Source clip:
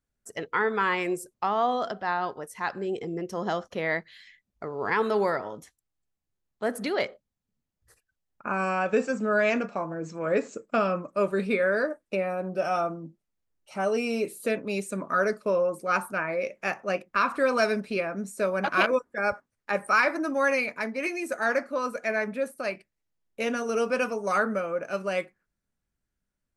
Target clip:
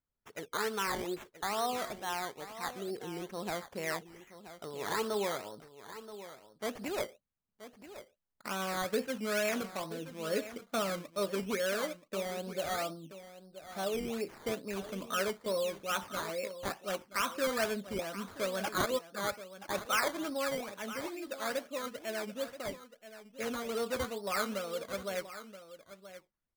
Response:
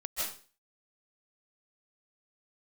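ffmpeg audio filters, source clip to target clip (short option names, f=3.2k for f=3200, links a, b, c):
-filter_complex "[0:a]asettb=1/sr,asplit=3[a][b][c];[a]atrim=end=20.374[d];[b]atrim=start=20.37:end=22.41,asetpts=PTS-STARTPTS,afade=t=in:d=0.004:c=qsin,afade=t=out:st=2.036:d=0.004:c=qsin,lowpass=f=1.4k:p=1[e];[c]atrim=start=22.406[f];[d][e]acrossfade=d=0.004:c1=hsin:c2=qsin[g];[g][f]acrossfade=d=0.004:c1=qsin:c2=hsin,acrusher=samples=13:mix=1:aa=0.000001:lfo=1:lforange=7.8:lforate=2.3,aecho=1:1:978:0.211,volume=-8.5dB"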